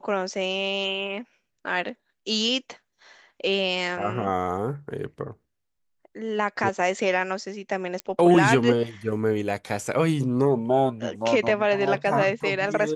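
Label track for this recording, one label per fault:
8.000000	8.000000	pop -16 dBFS

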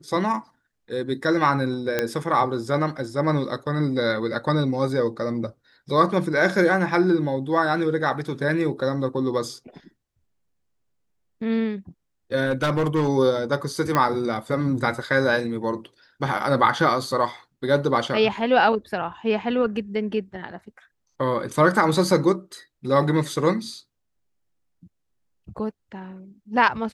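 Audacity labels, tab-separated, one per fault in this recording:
1.990000	1.990000	pop -8 dBFS
12.460000	13.090000	clipped -17 dBFS
13.950000	13.950000	pop -8 dBFS

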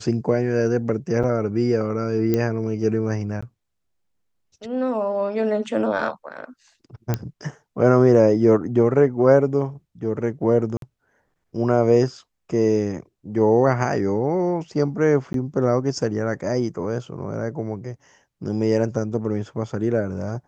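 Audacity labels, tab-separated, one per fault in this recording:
1.230000	1.240000	gap 6 ms
2.340000	2.340000	pop -9 dBFS
3.410000	3.420000	gap 15 ms
7.140000	7.140000	pop -9 dBFS
10.770000	10.820000	gap 52 ms
15.330000	15.340000	gap 12 ms

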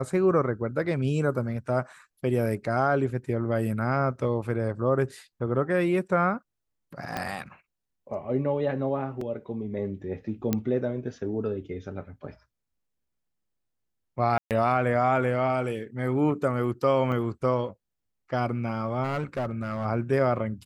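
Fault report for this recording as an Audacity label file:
7.170000	7.170000	pop -15 dBFS
9.210000	9.210000	gap 3.5 ms
10.530000	10.530000	pop -11 dBFS
14.380000	14.510000	gap 0.128 s
17.120000	17.120000	gap 2.6 ms
19.030000	19.860000	clipped -24.5 dBFS

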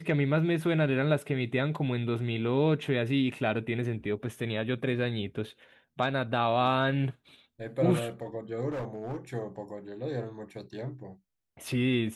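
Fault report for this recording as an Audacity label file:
8.690000	9.170000	clipped -31 dBFS

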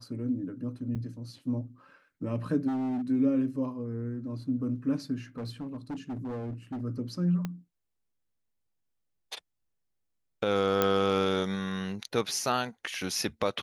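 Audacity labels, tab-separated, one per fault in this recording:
0.950000	0.960000	gap 6.2 ms
2.670000	3.020000	clipped -28.5 dBFS
5.380000	6.820000	clipped -32.5 dBFS
7.450000	7.450000	pop -20 dBFS
10.820000	10.820000	pop -10 dBFS

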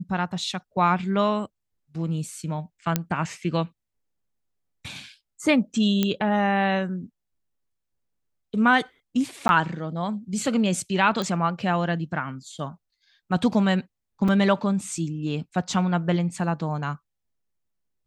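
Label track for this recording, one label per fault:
2.960000	2.960000	pop -7 dBFS
6.030000	6.030000	pop -9 dBFS
9.480000	9.490000	gap 11 ms
11.220000	11.220000	pop -15 dBFS
14.280000	14.280000	gap 4.4 ms

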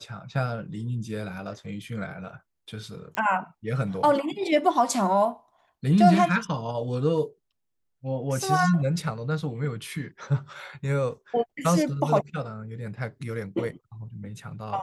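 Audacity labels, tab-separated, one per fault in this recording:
3.150000	3.150000	pop -15 dBFS

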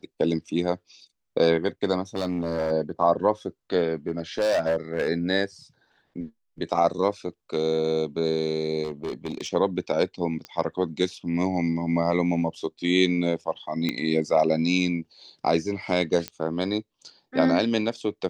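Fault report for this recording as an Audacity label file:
2.150000	2.720000	clipped -21.5 dBFS
4.080000	5.080000	clipped -19 dBFS
8.840000	9.530000	clipped -25.5 dBFS
10.450000	10.450000	pop -21 dBFS
13.890000	13.890000	pop -13 dBFS
16.280000	16.280000	pop -14 dBFS

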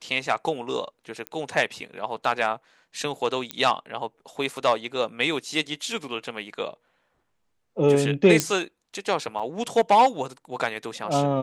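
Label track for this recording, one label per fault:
1.270000	1.270000	pop -17 dBFS
3.510000	3.510000	pop -13 dBFS
8.400000	8.400000	pop -5 dBFS
9.390000	9.400000	gap 5.9 ms

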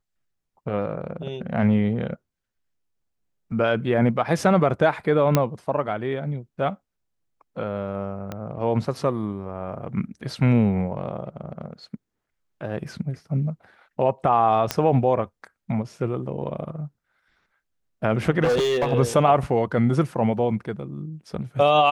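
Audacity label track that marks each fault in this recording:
5.350000	5.350000	pop -4 dBFS
8.320000	8.320000	pop -17 dBFS
14.710000	14.710000	pop -6 dBFS
18.440000	18.930000	clipped -17.5 dBFS

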